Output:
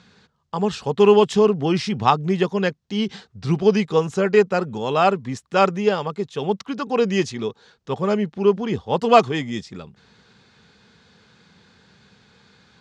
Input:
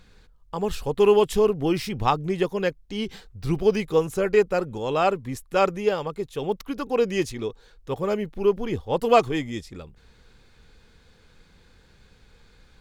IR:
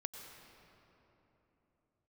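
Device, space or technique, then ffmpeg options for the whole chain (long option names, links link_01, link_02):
car door speaker: -af "highpass=96,highpass=100,equalizer=frequency=200:width_type=q:width=4:gain=4,equalizer=frequency=310:width_type=q:width=4:gain=-6,equalizer=frequency=520:width_type=q:width=4:gain=-5,equalizer=frequency=2300:width_type=q:width=4:gain=-3,lowpass=frequency=6900:width=0.5412,lowpass=frequency=6900:width=1.3066,volume=5.5dB"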